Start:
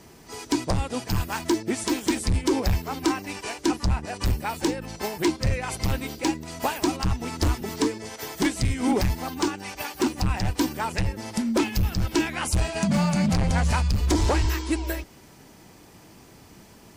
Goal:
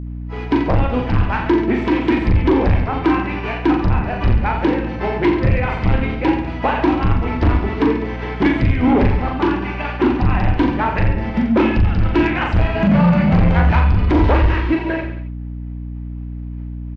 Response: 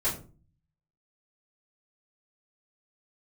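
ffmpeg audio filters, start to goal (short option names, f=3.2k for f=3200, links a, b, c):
-filter_complex "[0:a]lowpass=f=2.7k:w=0.5412,lowpass=f=2.7k:w=1.3066,agate=range=-33dB:threshold=-39dB:ratio=3:detection=peak,aecho=1:1:40|86|138.9|199.7|269.7:0.631|0.398|0.251|0.158|0.1,asplit=2[a][b];[b]aeval=exprs='0.398*sin(PI/2*2.24*val(0)/0.398)':c=same,volume=-7dB[c];[a][c]amix=inputs=2:normalize=0,aeval=exprs='val(0)+0.0501*(sin(2*PI*60*n/s)+sin(2*PI*2*60*n/s)/2+sin(2*PI*3*60*n/s)/3+sin(2*PI*4*60*n/s)/4+sin(2*PI*5*60*n/s)/5)':c=same"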